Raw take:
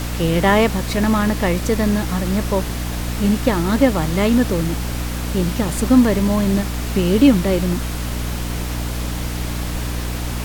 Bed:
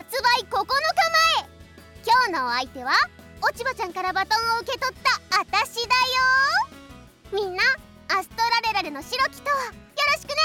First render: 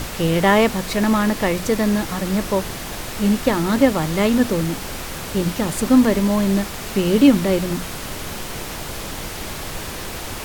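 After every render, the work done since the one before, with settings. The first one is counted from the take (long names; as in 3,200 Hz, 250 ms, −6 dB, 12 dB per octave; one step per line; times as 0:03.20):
mains-hum notches 60/120/180/240/300 Hz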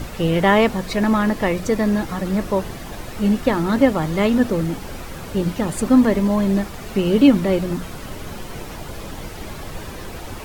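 broadband denoise 9 dB, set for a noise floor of −31 dBFS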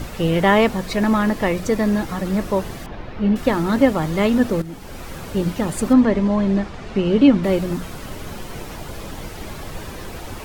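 0:02.86–0:03.36: high-frequency loss of the air 270 metres
0:04.62–0:05.10: fade in, from −13 dB
0:05.93–0:07.44: high-frequency loss of the air 110 metres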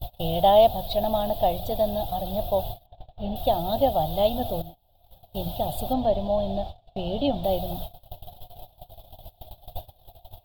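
noise gate −28 dBFS, range −28 dB
drawn EQ curve 110 Hz 0 dB, 210 Hz −16 dB, 450 Hz −15 dB, 710 Hz +10 dB, 1,100 Hz −20 dB, 2,100 Hz −28 dB, 3,500 Hz +5 dB, 6,300 Hz −22 dB, 9,600 Hz −11 dB, 14,000 Hz +9 dB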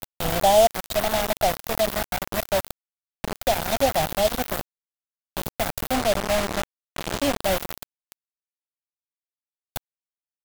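bit reduction 4 bits
pitch vibrato 6.2 Hz 8.2 cents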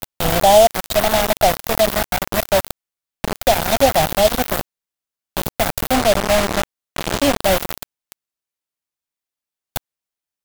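level +7 dB
brickwall limiter −2 dBFS, peak gain reduction 2 dB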